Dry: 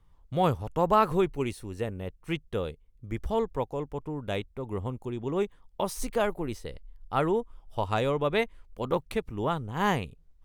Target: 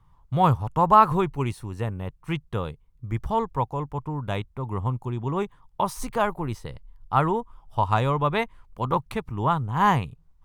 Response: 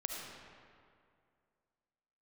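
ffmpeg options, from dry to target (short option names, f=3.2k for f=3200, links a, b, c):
-af "equalizer=f=125:t=o:w=1:g=10,equalizer=f=500:t=o:w=1:g=-4,equalizer=f=1k:t=o:w=1:g=11"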